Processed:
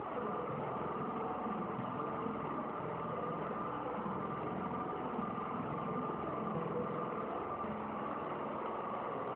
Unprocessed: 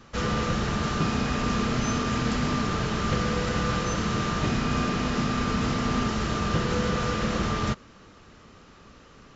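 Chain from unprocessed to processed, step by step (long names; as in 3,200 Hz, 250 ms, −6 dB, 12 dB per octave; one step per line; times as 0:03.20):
linear delta modulator 16 kbit/s, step −25.5 dBFS
reverb reduction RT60 1 s
high-pass filter 700 Hz 6 dB per octave
brickwall limiter −30 dBFS, peak gain reduction 10 dB
flanger 0.81 Hz, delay 2.1 ms, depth 6.2 ms, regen +38%
pitch vibrato 0.6 Hz 6.6 cents
log-companded quantiser 6 bits
Savitzky-Golay smoothing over 65 samples
on a send: repeating echo 155 ms, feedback 21%, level −19 dB
on the sum: spring reverb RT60 2.4 s, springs 47 ms, chirp 60 ms, DRR 0 dB
level +4.5 dB
AMR narrowband 12.2 kbit/s 8,000 Hz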